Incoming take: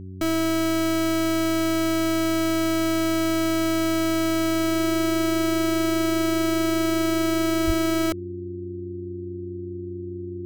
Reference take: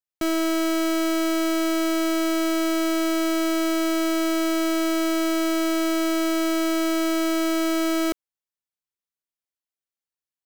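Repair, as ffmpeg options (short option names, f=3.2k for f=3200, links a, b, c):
-filter_complex "[0:a]bandreject=f=93.7:t=h:w=4,bandreject=f=187.4:t=h:w=4,bandreject=f=281.1:t=h:w=4,bandreject=f=374.8:t=h:w=4,bandreject=f=350:w=30,asplit=3[a][b][c];[a]afade=t=out:st=7.66:d=0.02[d];[b]highpass=f=140:w=0.5412,highpass=f=140:w=1.3066,afade=t=in:st=7.66:d=0.02,afade=t=out:st=7.78:d=0.02[e];[c]afade=t=in:st=7.78:d=0.02[f];[d][e][f]amix=inputs=3:normalize=0"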